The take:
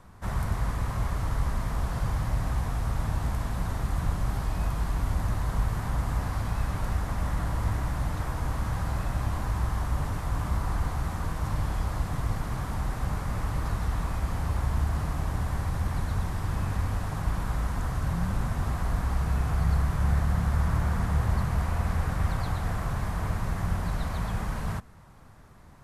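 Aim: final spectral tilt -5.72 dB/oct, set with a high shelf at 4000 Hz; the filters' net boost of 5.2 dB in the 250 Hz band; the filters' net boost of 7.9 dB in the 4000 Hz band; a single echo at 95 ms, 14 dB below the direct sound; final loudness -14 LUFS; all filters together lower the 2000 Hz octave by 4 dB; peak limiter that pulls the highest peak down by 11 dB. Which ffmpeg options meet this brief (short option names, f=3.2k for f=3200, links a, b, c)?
-af "equalizer=f=250:t=o:g=8,equalizer=f=2k:t=o:g=-8.5,highshelf=f=4k:g=6.5,equalizer=f=4k:t=o:g=8,alimiter=limit=-23.5dB:level=0:latency=1,aecho=1:1:95:0.2,volume=19dB"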